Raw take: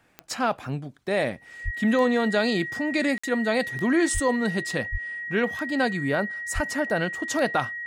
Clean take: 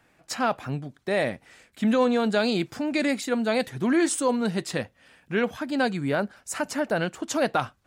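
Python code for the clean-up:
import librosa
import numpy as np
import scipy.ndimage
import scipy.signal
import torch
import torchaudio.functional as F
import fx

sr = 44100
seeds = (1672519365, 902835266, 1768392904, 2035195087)

y = fx.fix_declick_ar(x, sr, threshold=10.0)
y = fx.notch(y, sr, hz=1900.0, q=30.0)
y = fx.fix_deplosive(y, sr, at_s=(1.64, 4.13, 4.91, 6.54))
y = fx.fix_interpolate(y, sr, at_s=(3.18,), length_ms=55.0)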